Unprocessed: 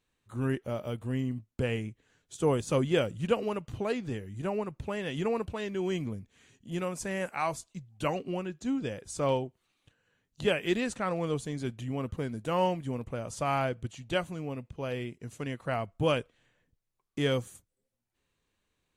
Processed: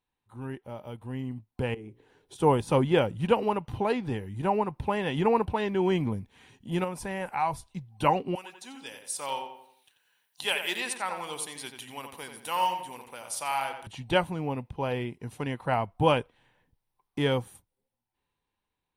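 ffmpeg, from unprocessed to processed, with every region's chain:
ffmpeg -i in.wav -filter_complex "[0:a]asettb=1/sr,asplit=3[link_01][link_02][link_03];[link_01]atrim=end=1.744[link_04];[link_02]atrim=start=1.74:end=2.36,asetpts=PTS-STARTPTS,afade=type=in:duration=0.004:curve=qsin,afade=type=out:start_time=0.616:duration=0.004:curve=qsin,equalizer=frequency=400:width_type=o:width=0.86:gain=14.5,acompressor=threshold=-41dB:ratio=5:attack=3.2:release=140:knee=1:detection=peak,bandreject=frequency=60:width_type=h:width=6,bandreject=frequency=120:width_type=h:width=6,bandreject=frequency=180:width_type=h:width=6,bandreject=frequency=240:width_type=h:width=6,bandreject=frequency=300:width_type=h:width=6,bandreject=frequency=360:width_type=h:width=6,bandreject=frequency=420:width_type=h:width=6,bandreject=frequency=480:width_type=h:width=6,bandreject=frequency=540:width_type=h:width=6[link_05];[link_03]atrim=start=2.356[link_06];[link_04][link_05]acrossfade=duration=0.004:curve1=hsin:curve2=qsin[link_07];[link_07][link_06]acrossfade=duration=0.004:curve1=qsin:curve2=hsin,asettb=1/sr,asplit=3[link_08][link_09][link_10];[link_08]atrim=end=6.844[link_11];[link_09]atrim=start=6.84:end=7.74,asetpts=PTS-STARTPTS,afade=type=in:duration=0.004:curve=qsin,afade=type=out:start_time=0.896:duration=0.004:curve=qsin,asubboost=boost=12:cutoff=130,acompressor=threshold=-42dB:ratio=1.5:attack=3.2:release=140:knee=1:detection=peak[link_12];[link_10]atrim=start=7.736[link_13];[link_11][link_12]acrossfade=duration=0.004:curve1=hsin:curve2=qsin[link_14];[link_14][link_13]acrossfade=duration=0.004:curve1=qsin:curve2=hsin,asettb=1/sr,asplit=3[link_15][link_16][link_17];[link_15]atrim=end=8.354[link_18];[link_16]atrim=start=8.35:end=13.87,asetpts=PTS-STARTPTS,afade=type=in:duration=0.004:curve=qsin,afade=type=out:start_time=5.516:duration=0.004:curve=qsin,aderivative,acontrast=64,asplit=2[link_19][link_20];[link_20]adelay=88,lowpass=frequency=3200:poles=1,volume=-6.5dB,asplit=2[link_21][link_22];[link_22]adelay=88,lowpass=frequency=3200:poles=1,volume=0.42,asplit=2[link_23][link_24];[link_24]adelay=88,lowpass=frequency=3200:poles=1,volume=0.42,asplit=2[link_25][link_26];[link_26]adelay=88,lowpass=frequency=3200:poles=1,volume=0.42,asplit=2[link_27][link_28];[link_28]adelay=88,lowpass=frequency=3200:poles=1,volume=0.42[link_29];[link_19][link_21][link_23][link_25][link_27][link_29]amix=inputs=6:normalize=0,atrim=end_sample=243432[link_30];[link_17]atrim=start=13.866[link_31];[link_18][link_30]acrossfade=duration=0.004:curve1=hsin:curve2=qsin[link_32];[link_32][link_31]acrossfade=duration=0.004:curve1=qsin:curve2=hsin,superequalizer=9b=2.82:14b=0.708:15b=0.316,dynaudnorm=framelen=300:gausssize=11:maxgain=16.5dB,adynamicequalizer=threshold=0.0251:dfrequency=2700:dqfactor=0.7:tfrequency=2700:tqfactor=0.7:attack=5:release=100:ratio=0.375:range=2.5:mode=cutabove:tftype=highshelf,volume=-8dB" out.wav

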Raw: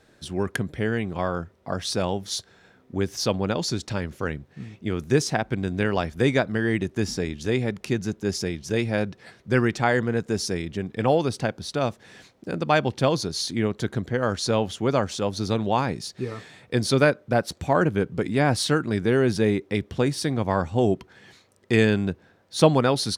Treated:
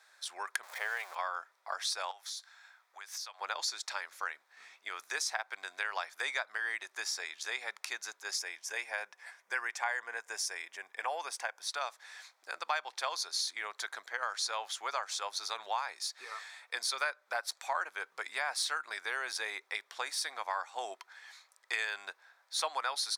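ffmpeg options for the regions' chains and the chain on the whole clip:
ffmpeg -i in.wav -filter_complex "[0:a]asettb=1/sr,asplit=3[link_01][link_02][link_03];[link_01]atrim=end=0.634[link_04];[link_02]atrim=start=0.63:end=1.15,asetpts=PTS-STARTPTS,afade=type=in:duration=0.004:curve=qsin,afade=type=out:start_time=0.516:duration=0.004:curve=qsin,aeval=exprs='val(0)+0.5*0.015*sgn(val(0))':channel_layout=same,highpass=frequency=560:width_type=q:width=1.9[link_05];[link_03]atrim=start=1.146[link_06];[link_04][link_05]acrossfade=duration=0.004:curve1=hsin:curve2=qsin[link_07];[link_07][link_06]acrossfade=duration=0.004:curve1=qsin:curve2=hsin,asettb=1/sr,asplit=3[link_08][link_09][link_10];[link_08]atrim=end=2.114[link_11];[link_09]atrim=start=2.11:end=3.41,asetpts=PTS-STARTPTS,afade=type=in:duration=0.004:curve=qsin,afade=type=out:start_time=1.296:duration=0.004:curve=qsin,highpass=730,acompressor=threshold=-37dB:ratio=12:attack=3.2:release=140:knee=1:detection=peak[link_12];[link_10]atrim=start=3.406[link_13];[link_11][link_12]acrossfade=duration=0.004:curve1=hsin:curve2=qsin[link_14];[link_14][link_13]acrossfade=duration=0.004:curve1=qsin:curve2=hsin,asettb=1/sr,asplit=3[link_15][link_16][link_17];[link_15]atrim=end=8.394[link_18];[link_16]atrim=start=8.39:end=11.67,asetpts=PTS-STARTPTS,afade=type=in:duration=0.004:curve=qsin,afade=type=out:start_time=3.276:duration=0.004:curve=qsin,equalizer=frequency=4100:width=3.2:gain=-11.5,bandreject=frequency=1300:width=9.8[link_19];[link_17]atrim=start=11.666[link_20];[link_18][link_19]acrossfade=duration=0.004:curve1=hsin:curve2=qsin[link_21];[link_21][link_20]acrossfade=duration=0.004:curve1=qsin:curve2=hsin,highpass=frequency=890:width=0.5412,highpass=frequency=890:width=1.3066,equalizer=frequency=2900:width=5.6:gain=-9,acompressor=threshold=-33dB:ratio=2.5" out.wav

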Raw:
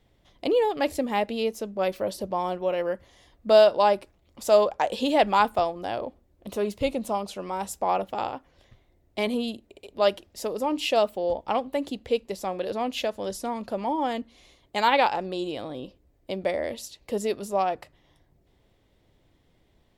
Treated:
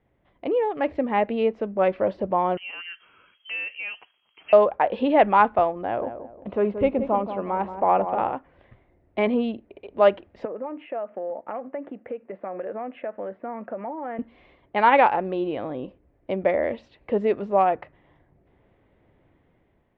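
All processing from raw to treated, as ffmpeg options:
ffmpeg -i in.wav -filter_complex "[0:a]asettb=1/sr,asplit=3[link_01][link_02][link_03];[link_01]atrim=end=2.574[link_04];[link_02]atrim=start=2.57:end=4.53,asetpts=PTS-STARTPTS,afade=type=in:duration=0.004:curve=qsin,afade=type=out:start_time=1.956:duration=0.004:curve=qsin,lowpass=frequency=2800:width_type=q:width=0.5098,lowpass=frequency=2800:width_type=q:width=0.6013,lowpass=frequency=2800:width_type=q:width=0.9,lowpass=frequency=2800:width_type=q:width=2.563,afreqshift=-3300,acompressor=threshold=-40dB:ratio=2:attack=3.2:release=140:knee=1:detection=peak[link_05];[link_03]atrim=start=4.526[link_06];[link_04][link_05]acrossfade=duration=0.004:curve1=hsin:curve2=qsin[link_07];[link_07][link_06]acrossfade=duration=0.004:curve1=qsin:curve2=hsin,asettb=1/sr,asplit=3[link_08][link_09][link_10];[link_08]atrim=end=5.844[link_11];[link_09]atrim=start=5.84:end=8.33,asetpts=PTS-STARTPTS,afade=type=in:duration=0.004:curve=qsin,afade=type=out:start_time=2.486:duration=0.004:curve=qsin,highshelf=frequency=4300:gain=-11,asplit=2[link_12][link_13];[link_13]adelay=178,lowpass=frequency=1000:poles=1,volume=-8.5dB,asplit=2[link_14][link_15];[link_15]adelay=178,lowpass=frequency=1000:poles=1,volume=0.38,asplit=2[link_16][link_17];[link_17]adelay=178,lowpass=frequency=1000:poles=1,volume=0.38,asplit=2[link_18][link_19];[link_19]adelay=178,lowpass=frequency=1000:poles=1,volume=0.38[link_20];[link_12][link_14][link_16][link_18][link_20]amix=inputs=5:normalize=0,atrim=end_sample=109809[link_21];[link_10]atrim=start=8.326[link_22];[link_11][link_21]acrossfade=duration=0.004:curve1=hsin:curve2=qsin[link_23];[link_23][link_22]acrossfade=duration=0.004:curve1=qsin:curve2=hsin,asettb=1/sr,asplit=3[link_24][link_25][link_26];[link_24]atrim=end=10.454[link_27];[link_25]atrim=start=10.45:end=14.19,asetpts=PTS-STARTPTS,afade=type=in:duration=0.004:curve=qsin,afade=type=out:start_time=3.736:duration=0.004:curve=qsin,bandreject=frequency=800:width=15,acompressor=threshold=-30dB:ratio=6:attack=3.2:release=140:knee=1:detection=peak,highpass=270,equalizer=frequency=290:width_type=q:width=4:gain=-3,equalizer=frequency=410:width_type=q:width=4:gain=-5,equalizer=frequency=990:width_type=q:width=4:gain=-7,lowpass=frequency=2000:width=0.5412,lowpass=frequency=2000:width=1.3066[link_28];[link_26]atrim=start=14.186[link_29];[link_27][link_28]acrossfade=duration=0.004:curve1=hsin:curve2=qsin[link_30];[link_30][link_29]acrossfade=duration=0.004:curve1=qsin:curve2=hsin,lowpass=frequency=2300:width=0.5412,lowpass=frequency=2300:width=1.3066,lowshelf=frequency=61:gain=-9.5,dynaudnorm=framelen=690:gausssize=3:maxgain=7dB,volume=-1.5dB" out.wav

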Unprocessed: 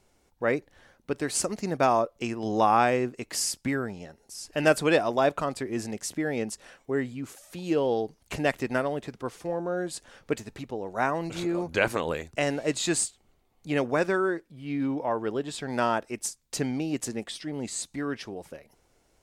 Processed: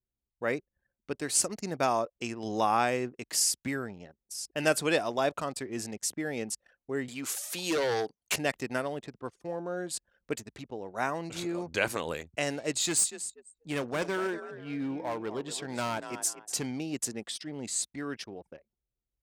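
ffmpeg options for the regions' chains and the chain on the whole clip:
ffmpeg -i in.wav -filter_complex "[0:a]asettb=1/sr,asplit=3[link_01][link_02][link_03];[link_01]atrim=end=7.084[link_04];[link_02]atrim=start=7.08:end=8.36,asetpts=PTS-STARTPTS,afade=type=in:duration=0.004:curve=qsin,afade=type=out:start_time=1.276:duration=0.004:curve=qsin,highpass=frequency=790:poles=1,aeval=exprs='0.106*sin(PI/2*2.51*val(0)/0.106)':channel_layout=same[link_05];[link_03]atrim=start=8.356[link_06];[link_04][link_05]acrossfade=duration=0.004:curve1=hsin:curve2=qsin[link_07];[link_07][link_06]acrossfade=duration=0.004:curve1=qsin:curve2=hsin,asettb=1/sr,asplit=3[link_08][link_09][link_10];[link_08]atrim=end=12.814[link_11];[link_09]atrim=start=12.81:end=16.67,asetpts=PTS-STARTPTS,afade=type=in:duration=0.004:curve=qsin,afade=type=out:start_time=3.856:duration=0.004:curve=qsin,deesser=0.3,asplit=5[link_12][link_13][link_14][link_15][link_16];[link_13]adelay=240,afreqshift=41,volume=-12.5dB[link_17];[link_14]adelay=480,afreqshift=82,volume=-21.6dB[link_18];[link_15]adelay=720,afreqshift=123,volume=-30.7dB[link_19];[link_16]adelay=960,afreqshift=164,volume=-39.9dB[link_20];[link_12][link_17][link_18][link_19][link_20]amix=inputs=5:normalize=0,atrim=end_sample=170226,aeval=exprs='clip(val(0),-1,0.0668)':channel_layout=same[link_21];[link_10]atrim=start=16.666[link_22];[link_11][link_21]acrossfade=duration=0.004:curve1=hsin:curve2=qsin[link_23];[link_23][link_22]acrossfade=duration=0.004:curve1=qsin:curve2=hsin,anlmdn=0.0631,highpass=58,highshelf=frequency=3400:gain=9.5,volume=-5.5dB" out.wav

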